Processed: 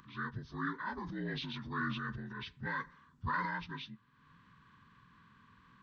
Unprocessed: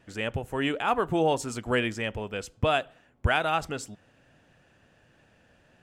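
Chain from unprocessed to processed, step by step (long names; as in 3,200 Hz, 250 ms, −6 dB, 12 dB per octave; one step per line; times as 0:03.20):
partials spread apart or drawn together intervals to 78%
drawn EQ curve 220 Hz 0 dB, 670 Hz −27 dB, 1,000 Hz 0 dB
upward compression, threshold −48 dBFS
0:00.97–0:03.51: transient designer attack −7 dB, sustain +7 dB
level −5 dB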